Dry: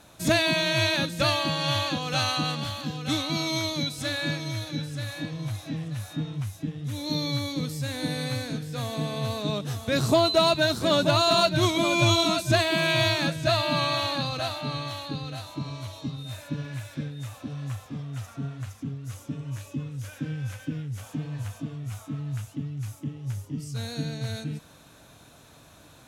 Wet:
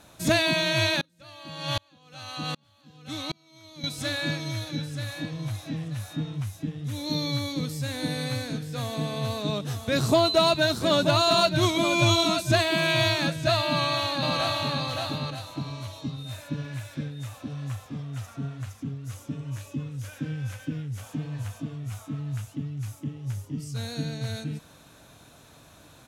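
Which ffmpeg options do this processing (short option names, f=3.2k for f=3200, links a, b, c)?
-filter_complex "[0:a]asettb=1/sr,asplit=3[a][b][c];[a]atrim=end=1.014[d];[b]atrim=start=1.01:end=3.84,asetpts=PTS-STARTPTS,afade=t=in:d=0.004:c=qsin,afade=t=out:st=2.826:d=0.004:c=qsin,aeval=exprs='val(0)*pow(10,-37*if(lt(mod(-1.3*n/s,1),2*abs(-1.3)/1000),1-mod(-1.3*n/s,1)/(2*abs(-1.3)/1000),(mod(-1.3*n/s,1)-2*abs(-1.3)/1000)/(1-2*abs(-1.3)/1000))/20)':c=same[e];[c]atrim=start=3.836[f];[d][e]acrossfade=d=0.004:c1=hsin:c2=qsin[g];[g][f]acrossfade=d=0.004:c1=qsin:c2=hsin,asplit=2[h][i];[i]afade=t=in:st=13.65:d=0.01,afade=t=out:st=14.73:d=0.01,aecho=0:1:570|1140|1710:0.749894|0.112484|0.0168726[j];[h][j]amix=inputs=2:normalize=0"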